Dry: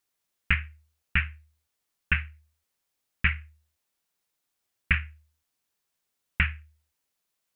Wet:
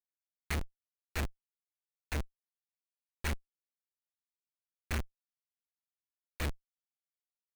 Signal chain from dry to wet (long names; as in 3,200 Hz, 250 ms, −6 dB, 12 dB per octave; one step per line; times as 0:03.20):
in parallel at +2.5 dB: downward compressor 6 to 1, threshold −34 dBFS, peak gain reduction 15.5 dB
on the sum: comparator with hysteresis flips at −26 dBFS
brickwall limiter −34.5 dBFS, peak gain reduction 9 dB
level +4.5 dB